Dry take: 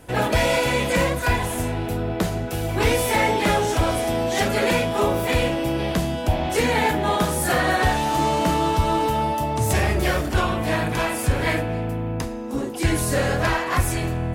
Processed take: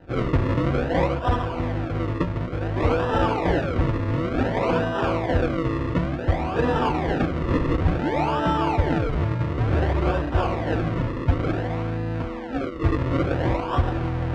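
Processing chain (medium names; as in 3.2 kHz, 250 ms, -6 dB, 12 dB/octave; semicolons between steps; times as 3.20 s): reverse; upward compressor, threshold -25 dBFS; reverse; decimation with a swept rate 39×, swing 100% 0.56 Hz; low-pass 2.2 kHz 12 dB/octave; comb of notches 210 Hz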